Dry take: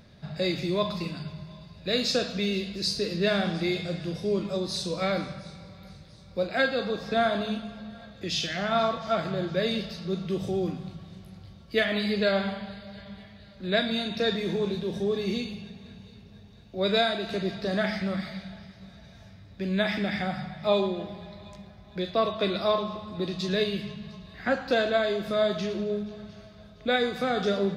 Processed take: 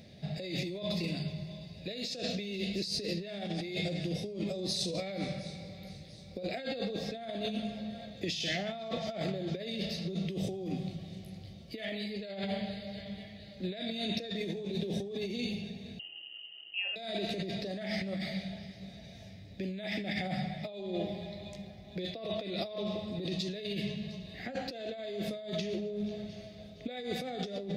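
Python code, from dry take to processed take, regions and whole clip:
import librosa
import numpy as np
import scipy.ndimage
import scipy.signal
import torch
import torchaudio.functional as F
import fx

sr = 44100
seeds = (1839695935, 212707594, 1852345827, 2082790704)

y = fx.chain(x, sr, fx.fixed_phaser(hz=1600.0, stages=4),
    fx.freq_invert(carrier_hz=3000), at=(15.99, 16.96))
y = fx.highpass(y, sr, hz=110.0, slope=6)
y = fx.band_shelf(y, sr, hz=1200.0, db=-14.5, octaves=1.0)
y = fx.over_compress(y, sr, threshold_db=-34.0, ratio=-1.0)
y = y * 10.0 ** (-2.5 / 20.0)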